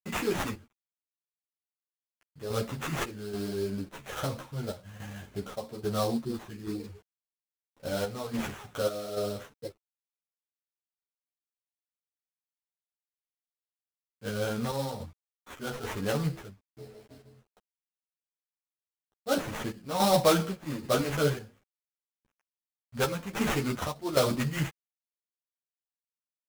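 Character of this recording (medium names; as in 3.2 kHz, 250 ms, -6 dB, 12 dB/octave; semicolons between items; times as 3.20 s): a quantiser's noise floor 10-bit, dither none; chopped level 1.2 Hz, depth 60%, duty 65%; aliases and images of a low sample rate 4.7 kHz, jitter 20%; a shimmering, thickened sound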